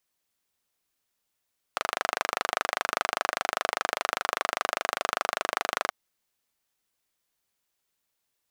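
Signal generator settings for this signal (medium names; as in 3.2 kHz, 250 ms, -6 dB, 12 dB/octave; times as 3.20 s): single-cylinder engine model, steady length 4.13 s, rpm 3000, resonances 720/1200 Hz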